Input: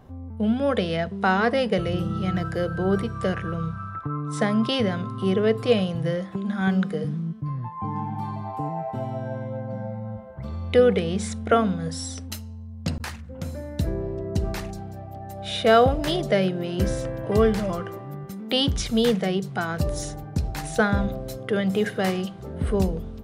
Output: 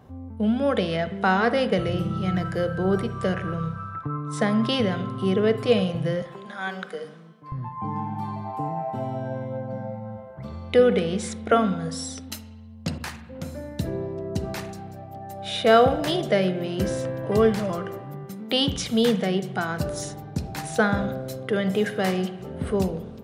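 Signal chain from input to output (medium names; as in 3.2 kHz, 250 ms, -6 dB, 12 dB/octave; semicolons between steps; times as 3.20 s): high-pass 65 Hz 12 dB/octave, from 6.22 s 530 Hz, from 7.52 s 110 Hz; spring tank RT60 1 s, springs 38/49/53 ms, chirp 30 ms, DRR 12 dB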